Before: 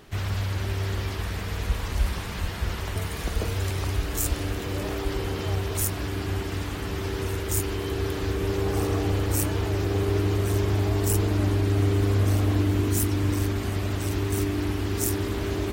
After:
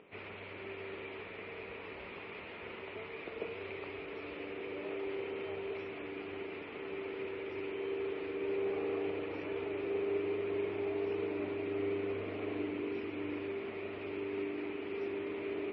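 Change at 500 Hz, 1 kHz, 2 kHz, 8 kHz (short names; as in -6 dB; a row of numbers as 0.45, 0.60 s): -5.5 dB, -12.5 dB, -8.5 dB, under -40 dB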